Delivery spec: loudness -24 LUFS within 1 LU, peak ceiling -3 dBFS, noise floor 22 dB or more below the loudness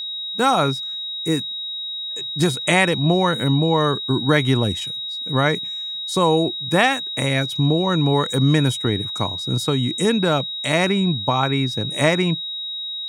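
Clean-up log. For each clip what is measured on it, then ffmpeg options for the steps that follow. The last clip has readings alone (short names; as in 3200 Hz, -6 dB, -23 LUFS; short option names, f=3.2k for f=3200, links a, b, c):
steady tone 3800 Hz; tone level -26 dBFS; loudness -20.0 LUFS; peak -3.5 dBFS; loudness target -24.0 LUFS
-> -af "bandreject=f=3.8k:w=30"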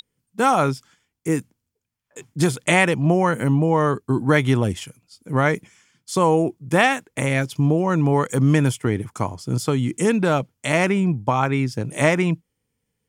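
steady tone none; loudness -20.5 LUFS; peak -4.0 dBFS; loudness target -24.0 LUFS
-> -af "volume=-3.5dB"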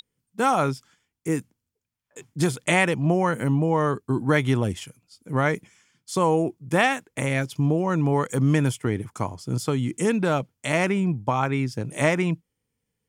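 loudness -24.0 LUFS; peak -7.5 dBFS; noise floor -82 dBFS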